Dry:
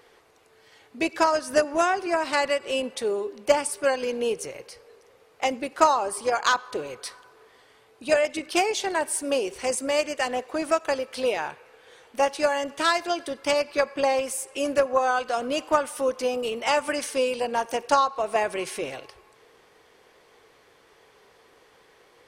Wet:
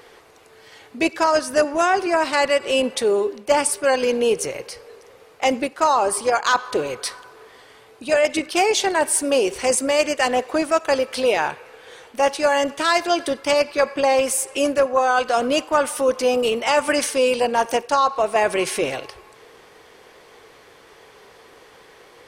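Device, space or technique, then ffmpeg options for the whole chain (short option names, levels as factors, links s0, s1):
compression on the reversed sound: -af "areverse,acompressor=threshold=0.0708:ratio=6,areverse,volume=2.82"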